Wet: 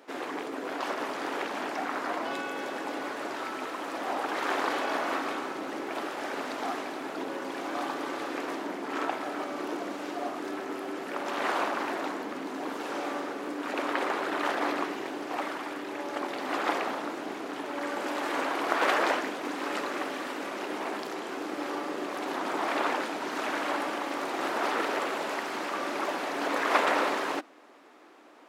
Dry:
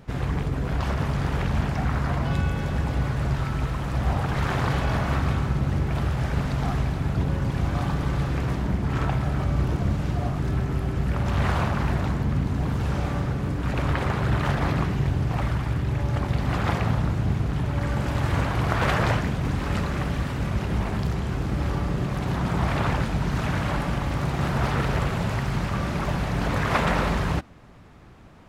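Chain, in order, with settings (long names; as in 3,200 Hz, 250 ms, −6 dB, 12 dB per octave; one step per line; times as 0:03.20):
elliptic high-pass filter 290 Hz, stop band 80 dB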